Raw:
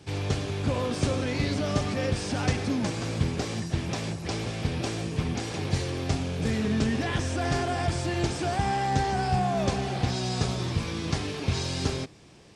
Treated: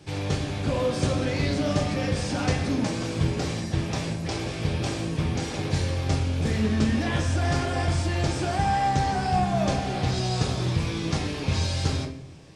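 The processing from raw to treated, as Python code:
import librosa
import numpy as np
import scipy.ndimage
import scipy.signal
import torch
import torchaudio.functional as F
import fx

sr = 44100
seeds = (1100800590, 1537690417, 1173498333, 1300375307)

y = fx.room_shoebox(x, sr, seeds[0], volume_m3=100.0, walls='mixed', distance_m=0.57)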